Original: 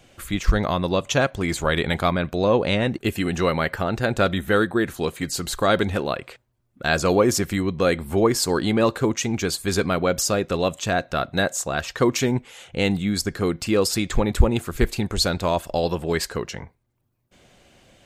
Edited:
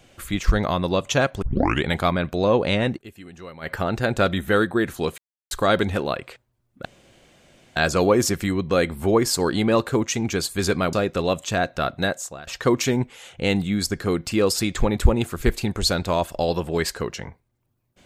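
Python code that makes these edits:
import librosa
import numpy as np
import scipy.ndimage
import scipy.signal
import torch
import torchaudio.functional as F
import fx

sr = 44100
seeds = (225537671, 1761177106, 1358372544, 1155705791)

y = fx.edit(x, sr, fx.tape_start(start_s=1.42, length_s=0.42),
    fx.fade_down_up(start_s=2.91, length_s=0.82, db=-18.0, fade_s=0.12),
    fx.silence(start_s=5.18, length_s=0.33),
    fx.insert_room_tone(at_s=6.85, length_s=0.91),
    fx.cut(start_s=10.02, length_s=0.26),
    fx.fade_out_to(start_s=11.32, length_s=0.5, floor_db=-21.5), tone=tone)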